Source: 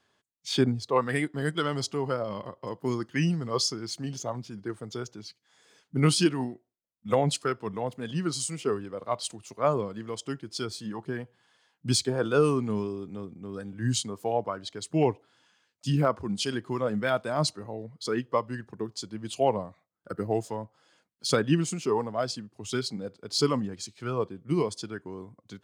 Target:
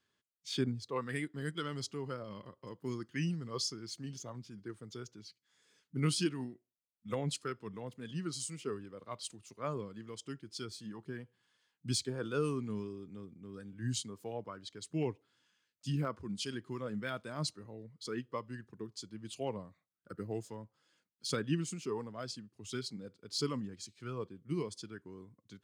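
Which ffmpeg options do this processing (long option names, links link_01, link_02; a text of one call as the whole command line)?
ffmpeg -i in.wav -af "equalizer=frequency=730:width_type=o:width=0.97:gain=-10,volume=-8.5dB" out.wav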